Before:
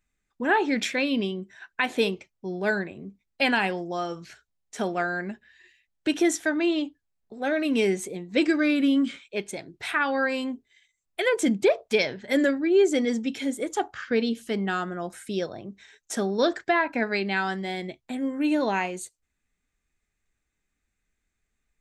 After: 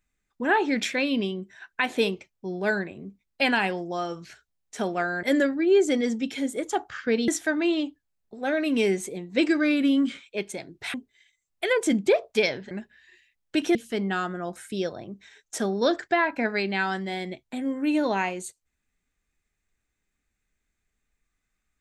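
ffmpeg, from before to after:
ffmpeg -i in.wav -filter_complex "[0:a]asplit=6[link_01][link_02][link_03][link_04][link_05][link_06];[link_01]atrim=end=5.232[link_07];[link_02]atrim=start=12.268:end=14.322[link_08];[link_03]atrim=start=6.268:end=9.932[link_09];[link_04]atrim=start=10.498:end=12.272[link_10];[link_05]atrim=start=5.228:end=6.272[link_11];[link_06]atrim=start=14.318[link_12];[link_07][link_08]acrossfade=duration=0.004:curve1=hsin:curve2=hsin[link_13];[link_13][link_09]acrossfade=duration=0.004:curve1=hsin:curve2=hsin[link_14];[link_14][link_10]acrossfade=duration=0.004:curve1=hsin:curve2=hsin[link_15];[link_15][link_11]acrossfade=duration=0.004:curve1=hsin:curve2=hsin[link_16];[link_16][link_12]acrossfade=duration=0.004:curve1=hsin:curve2=hsin" out.wav

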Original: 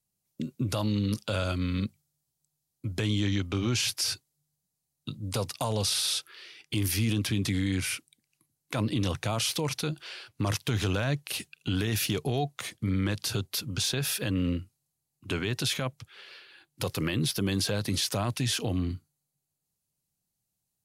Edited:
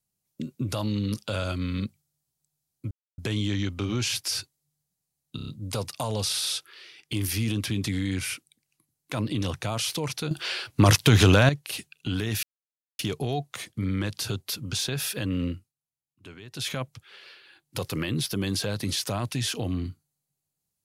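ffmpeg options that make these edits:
ffmpeg -i in.wav -filter_complex "[0:a]asplit=11[link_01][link_02][link_03][link_04][link_05][link_06][link_07][link_08][link_09][link_10][link_11];[link_01]atrim=end=2.91,asetpts=PTS-STARTPTS,afade=type=out:start_time=2.906:duration=0.004:curve=hsin,apad=pad_dur=0.27[link_12];[link_02]atrim=start=2.91:end=5.122,asetpts=PTS-STARTPTS,afade=type=in:duration=0.004:curve=hsin[link_13];[link_03]atrim=start=5.088:end=5.122[link_14];[link_04]atrim=start=5.088:end=5.122[link_15];[link_05]atrim=start=5.088:end=5.122[link_16];[link_06]atrim=start=5.088:end=9.922[link_17];[link_07]atrim=start=9.918:end=11.102,asetpts=PTS-STARTPTS,volume=11dB[link_18];[link_08]atrim=start=11.098:end=12.04,asetpts=PTS-STARTPTS,afade=type=out:start_time=0.938:duration=0.004:curve=hsin,apad=pad_dur=0.56[link_19];[link_09]atrim=start=12.04:end=14.78,asetpts=PTS-STARTPTS,afade=type=in:duration=0.004:curve=hsin,afade=type=out:start_time=2.55:duration=0.19:silence=0.188365[link_20];[link_10]atrim=start=14.78:end=15.56,asetpts=PTS-STARTPTS,volume=-14.5dB[link_21];[link_11]atrim=start=15.56,asetpts=PTS-STARTPTS,afade=type=in:duration=0.19:silence=0.188365[link_22];[link_12][link_13]concat=n=2:v=0:a=1[link_23];[link_23][link_14]acrossfade=duration=0.004:curve1=hsin:curve2=hsin[link_24];[link_24][link_15]acrossfade=duration=0.004:curve1=hsin:curve2=hsin[link_25];[link_25][link_16]acrossfade=duration=0.004:curve1=hsin:curve2=hsin[link_26];[link_26][link_17]acrossfade=duration=0.004:curve1=hsin:curve2=hsin[link_27];[link_27][link_18]acrossfade=duration=0.004:curve1=hsin:curve2=hsin[link_28];[link_19][link_20][link_21][link_22]concat=n=4:v=0:a=1[link_29];[link_28][link_29]acrossfade=duration=0.004:curve1=hsin:curve2=hsin" out.wav

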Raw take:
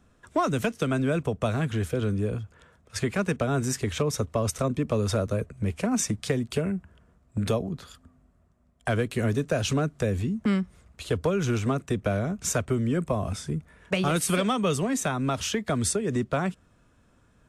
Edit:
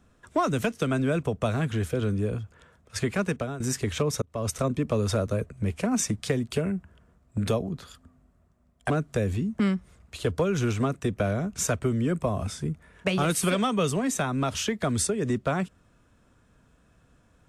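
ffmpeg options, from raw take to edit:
ffmpeg -i in.wav -filter_complex "[0:a]asplit=4[link_01][link_02][link_03][link_04];[link_01]atrim=end=3.6,asetpts=PTS-STARTPTS,afade=type=out:start_time=3.14:duration=0.46:curve=qsin:silence=0.16788[link_05];[link_02]atrim=start=3.6:end=4.22,asetpts=PTS-STARTPTS,afade=type=in:duration=0.004:curve=hsin:silence=0.16788,afade=type=out:start_time=0.616:duration=0.004:curve=hsin[link_06];[link_03]atrim=start=4.22:end=8.902,asetpts=PTS-STARTPTS,afade=type=in:duration=0.3[link_07];[link_04]atrim=start=9.758[link_08];[link_05][link_06][link_07]concat=n=3:v=0:a=1[link_09];[link_09][link_08]acrossfade=duration=0.004:curve1=hsin:curve2=hsin" out.wav

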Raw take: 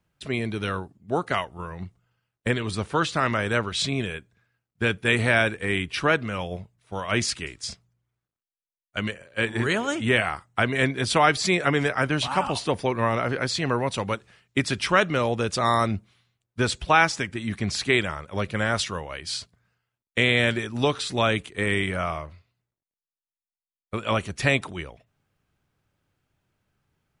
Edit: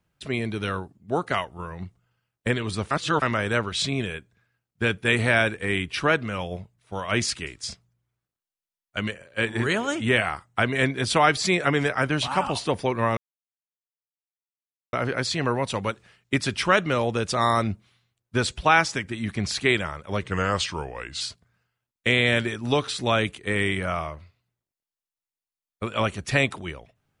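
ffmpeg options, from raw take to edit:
ffmpeg -i in.wav -filter_complex "[0:a]asplit=6[link_01][link_02][link_03][link_04][link_05][link_06];[link_01]atrim=end=2.912[link_07];[link_02]atrim=start=2.908:end=3.222,asetpts=PTS-STARTPTS,areverse[link_08];[link_03]atrim=start=3.218:end=13.17,asetpts=PTS-STARTPTS,afade=type=out:start_time=9.948:duration=0.004:curve=hsin,apad=pad_dur=1.76[link_09];[link_04]atrim=start=13.17:end=18.464,asetpts=PTS-STARTPTS,afade=type=in:duration=0.004:curve=hsin[link_10];[link_05]atrim=start=18.46:end=19.32,asetpts=PTS-STARTPTS,asetrate=38367,aresample=44100,atrim=end_sample=43593,asetpts=PTS-STARTPTS[link_11];[link_06]atrim=start=19.316[link_12];[link_07][link_08]acrossfade=duration=0.004:curve1=hsin:curve2=hsin[link_13];[link_09][link_10]concat=n=2:v=0:a=1[link_14];[link_13][link_14]acrossfade=duration=0.004:curve1=hsin:curve2=hsin[link_15];[link_15][link_11]acrossfade=duration=0.004:curve1=hsin:curve2=hsin[link_16];[link_16][link_12]acrossfade=duration=0.004:curve1=hsin:curve2=hsin" out.wav

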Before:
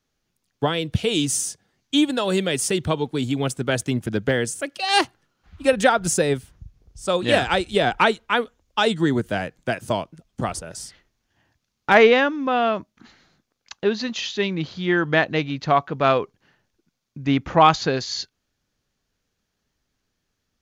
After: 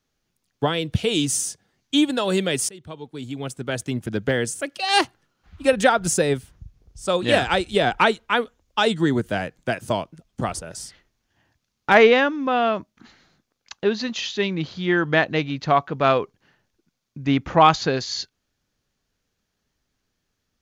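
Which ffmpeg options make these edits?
ffmpeg -i in.wav -filter_complex "[0:a]asplit=2[link_01][link_02];[link_01]atrim=end=2.69,asetpts=PTS-STARTPTS,afade=type=out:start_time=2.686:duration=0.004:curve=hsin:silence=0.0707946[link_03];[link_02]atrim=start=2.69,asetpts=PTS-STARTPTS,afade=type=in:duration=1.81:silence=0.0707946[link_04];[link_03][link_04]concat=n=2:v=0:a=1" out.wav

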